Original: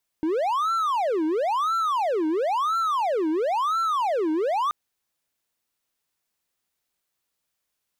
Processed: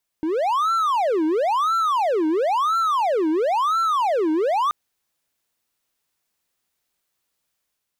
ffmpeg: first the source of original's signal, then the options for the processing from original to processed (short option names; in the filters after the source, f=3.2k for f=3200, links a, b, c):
-f lavfi -i "aevalsrc='0.112*(1-4*abs(mod((829.5*t-520.5/(2*PI*0.98)*sin(2*PI*0.98*t))+0.25,1)-0.5))':d=4.48:s=44100"
-af "dynaudnorm=f=100:g=7:m=3.5dB"